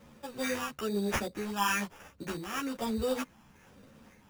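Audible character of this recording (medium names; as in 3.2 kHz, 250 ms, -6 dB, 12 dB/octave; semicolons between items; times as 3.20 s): phasing stages 6, 1.1 Hz, lowest notch 530–2700 Hz; aliases and images of a low sample rate 4.2 kHz, jitter 0%; a shimmering, thickened sound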